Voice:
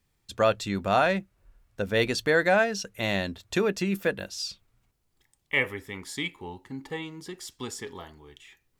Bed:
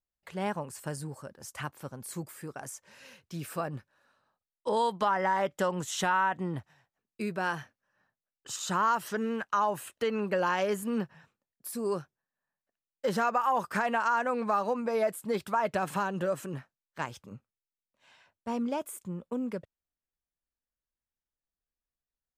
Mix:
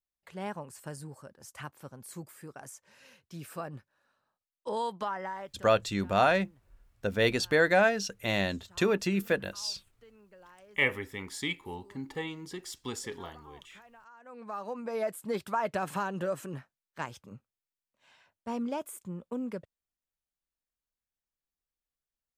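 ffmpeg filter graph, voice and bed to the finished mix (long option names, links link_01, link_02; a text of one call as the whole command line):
ffmpeg -i stem1.wav -i stem2.wav -filter_complex "[0:a]adelay=5250,volume=-1.5dB[link_01];[1:a]volume=20.5dB,afade=type=out:start_time=4.92:duration=0.77:silence=0.0749894,afade=type=in:start_time=14.2:duration=1.05:silence=0.0530884[link_02];[link_01][link_02]amix=inputs=2:normalize=0" out.wav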